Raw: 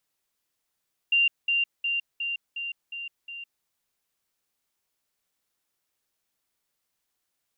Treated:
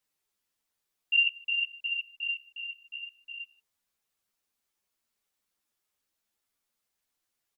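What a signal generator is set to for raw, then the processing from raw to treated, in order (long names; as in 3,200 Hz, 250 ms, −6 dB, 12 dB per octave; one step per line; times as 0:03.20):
level staircase 2,780 Hz −18 dBFS, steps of −3 dB, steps 7, 0.16 s 0.20 s
single-tap delay 152 ms −22 dB
string-ensemble chorus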